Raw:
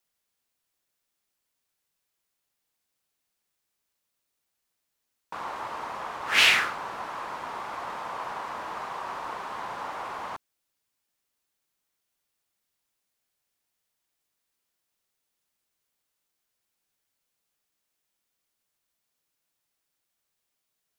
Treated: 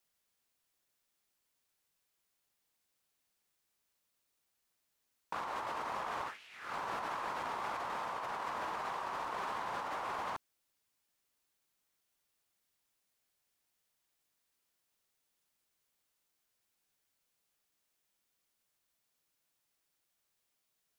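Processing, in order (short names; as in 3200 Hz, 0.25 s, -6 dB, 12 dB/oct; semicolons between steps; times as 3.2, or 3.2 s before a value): negative-ratio compressor -37 dBFS, ratio -1; gain -5 dB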